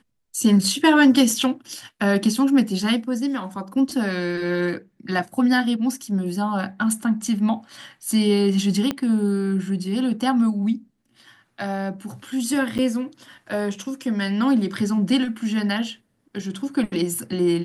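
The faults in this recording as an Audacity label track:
8.910000	8.910000	pop -10 dBFS
12.780000	12.790000	gap 7.8 ms

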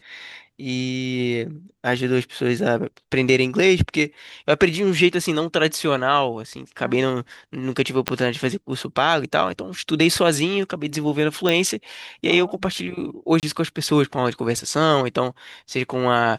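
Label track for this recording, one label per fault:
8.080000	8.080000	pop -4 dBFS
11.490000	11.490000	pop
13.400000	13.430000	gap 28 ms

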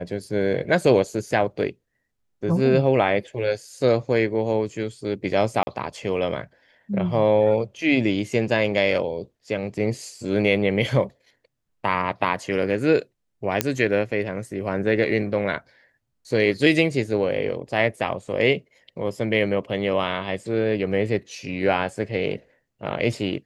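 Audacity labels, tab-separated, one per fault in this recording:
5.630000	5.670000	gap 40 ms
13.610000	13.610000	pop -2 dBFS

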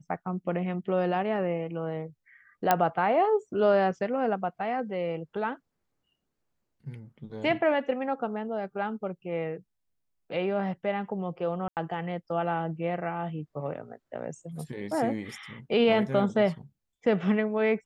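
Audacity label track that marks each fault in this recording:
2.710000	2.710000	pop -7 dBFS
11.680000	11.770000	gap 88 ms

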